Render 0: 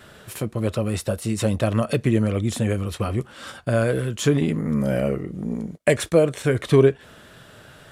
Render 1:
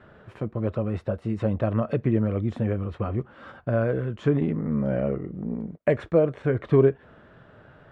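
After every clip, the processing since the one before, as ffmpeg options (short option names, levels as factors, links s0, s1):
-af "lowpass=1500,volume=0.708"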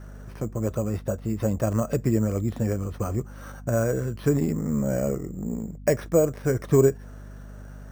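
-af "acrusher=samples=6:mix=1:aa=0.000001,aeval=exprs='val(0)+0.01*(sin(2*PI*50*n/s)+sin(2*PI*2*50*n/s)/2+sin(2*PI*3*50*n/s)/3+sin(2*PI*4*50*n/s)/4+sin(2*PI*5*50*n/s)/5)':c=same"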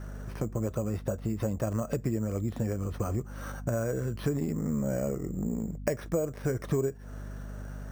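-af "acompressor=threshold=0.0355:ratio=4,volume=1.19"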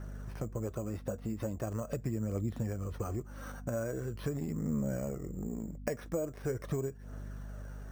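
-af "aphaser=in_gain=1:out_gain=1:delay=4.3:decay=0.29:speed=0.42:type=triangular,volume=0.531"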